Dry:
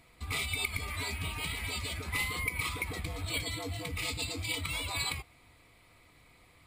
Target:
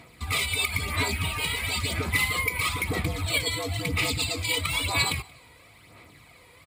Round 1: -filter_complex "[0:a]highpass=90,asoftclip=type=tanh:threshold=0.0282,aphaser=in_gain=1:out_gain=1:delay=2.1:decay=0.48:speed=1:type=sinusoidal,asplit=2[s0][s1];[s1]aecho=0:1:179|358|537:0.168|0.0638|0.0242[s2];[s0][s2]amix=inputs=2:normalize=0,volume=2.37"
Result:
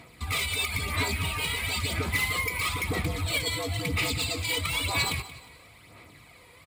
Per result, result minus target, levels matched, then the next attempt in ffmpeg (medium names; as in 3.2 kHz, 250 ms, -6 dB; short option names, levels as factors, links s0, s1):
saturation: distortion +11 dB; echo-to-direct +10 dB
-filter_complex "[0:a]highpass=90,asoftclip=type=tanh:threshold=0.0794,aphaser=in_gain=1:out_gain=1:delay=2.1:decay=0.48:speed=1:type=sinusoidal,asplit=2[s0][s1];[s1]aecho=0:1:179|358|537:0.168|0.0638|0.0242[s2];[s0][s2]amix=inputs=2:normalize=0,volume=2.37"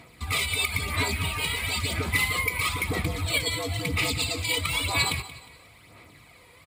echo-to-direct +10 dB
-filter_complex "[0:a]highpass=90,asoftclip=type=tanh:threshold=0.0794,aphaser=in_gain=1:out_gain=1:delay=2.1:decay=0.48:speed=1:type=sinusoidal,asplit=2[s0][s1];[s1]aecho=0:1:179|358:0.0531|0.0202[s2];[s0][s2]amix=inputs=2:normalize=0,volume=2.37"